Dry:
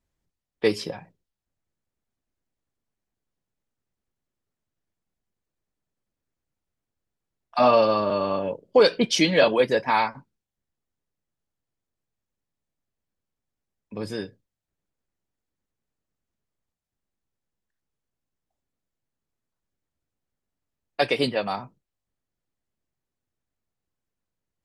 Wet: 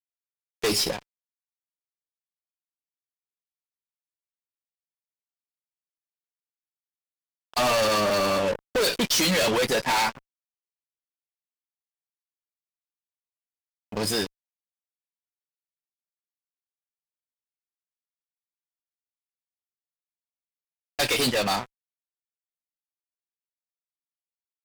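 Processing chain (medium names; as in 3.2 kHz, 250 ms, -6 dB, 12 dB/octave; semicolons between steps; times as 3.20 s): pre-emphasis filter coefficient 0.8; fuzz box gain 44 dB, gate -52 dBFS; trim -7.5 dB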